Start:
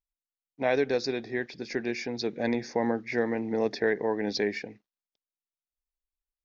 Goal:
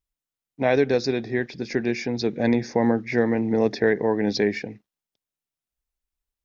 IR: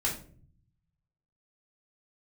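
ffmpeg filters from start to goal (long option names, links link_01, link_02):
-af "equalizer=frequency=100:width=0.46:gain=8,bandreject=frequency=4500:width=28,volume=4dB"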